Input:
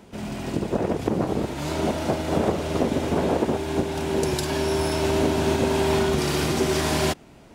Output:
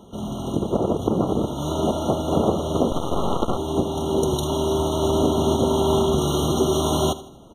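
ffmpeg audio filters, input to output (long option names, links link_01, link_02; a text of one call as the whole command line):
ffmpeg -i in.wav -filter_complex "[0:a]aecho=1:1:80|160|240|320:0.158|0.0682|0.0293|0.0126,asettb=1/sr,asplit=3[link_01][link_02][link_03];[link_01]atrim=end=2.914[link_04];[link_02]atrim=start=2.91:end=3.57,asetpts=PTS-STARTPTS,afade=type=in:duration=0.004:curve=qsin,afade=type=out:start_time=0.656:duration=0.004:curve=qsin,aeval=exprs='0.398*(cos(1*acos(clip(val(0)/0.398,-1,1)))-cos(1*PI/2))+0.1*(cos(3*acos(clip(val(0)/0.398,-1,1)))-cos(3*PI/2))+0.0631*(cos(8*acos(clip(val(0)/0.398,-1,1)))-cos(8*PI/2))':channel_layout=same[link_05];[link_03]atrim=start=3.566[link_06];[link_04][link_05]acrossfade=duration=0.004:curve1=hsin:curve2=qsin[link_07];[link_07][link_06]acrossfade=duration=0.004:curve1=qsin:curve2=hsin,afftfilt=real='re*eq(mod(floor(b*sr/1024/1400),2),0)':imag='im*eq(mod(floor(b*sr/1024/1400),2),0)':win_size=1024:overlap=0.75,volume=2.5dB" out.wav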